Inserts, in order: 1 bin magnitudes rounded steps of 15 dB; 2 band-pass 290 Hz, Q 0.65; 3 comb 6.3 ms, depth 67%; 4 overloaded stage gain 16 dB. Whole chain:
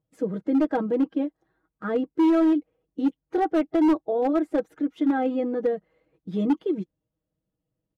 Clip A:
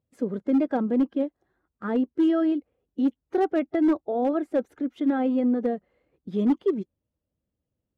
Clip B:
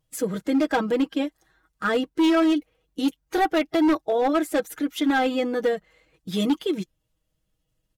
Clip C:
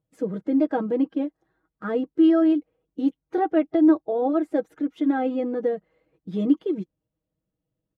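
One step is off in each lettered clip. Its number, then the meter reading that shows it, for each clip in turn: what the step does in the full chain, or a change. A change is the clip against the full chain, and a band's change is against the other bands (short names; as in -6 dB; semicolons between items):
3, 1 kHz band -1.5 dB; 2, 2 kHz band +8.5 dB; 4, distortion -14 dB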